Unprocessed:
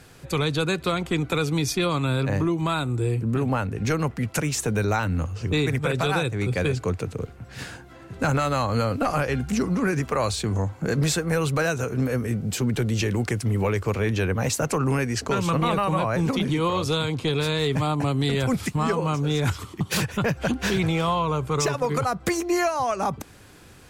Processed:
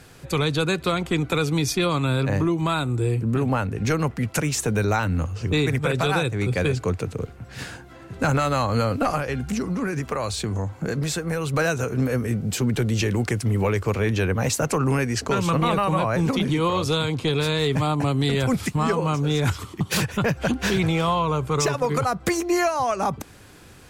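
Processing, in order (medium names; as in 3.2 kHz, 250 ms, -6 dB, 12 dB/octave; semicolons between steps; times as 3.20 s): 9.15–11.54 s: compression, threshold -24 dBFS, peak gain reduction 5.5 dB; trim +1.5 dB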